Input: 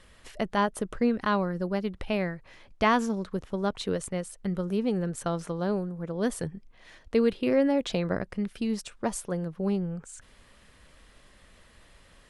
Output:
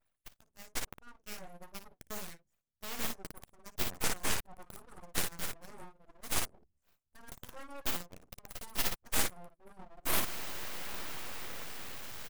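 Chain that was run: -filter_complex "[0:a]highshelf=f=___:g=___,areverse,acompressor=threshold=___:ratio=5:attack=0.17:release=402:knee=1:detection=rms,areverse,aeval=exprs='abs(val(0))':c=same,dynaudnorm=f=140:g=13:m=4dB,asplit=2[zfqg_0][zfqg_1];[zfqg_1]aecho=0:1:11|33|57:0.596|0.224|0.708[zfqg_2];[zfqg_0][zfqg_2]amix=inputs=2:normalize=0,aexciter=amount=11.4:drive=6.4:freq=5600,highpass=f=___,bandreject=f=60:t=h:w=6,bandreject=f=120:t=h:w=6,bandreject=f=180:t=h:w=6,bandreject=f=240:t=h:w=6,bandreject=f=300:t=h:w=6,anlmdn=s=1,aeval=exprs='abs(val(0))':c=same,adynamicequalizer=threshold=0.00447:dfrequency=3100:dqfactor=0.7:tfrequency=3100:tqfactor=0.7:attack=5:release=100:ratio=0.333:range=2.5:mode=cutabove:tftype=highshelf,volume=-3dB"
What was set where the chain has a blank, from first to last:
2200, 8, -41dB, 48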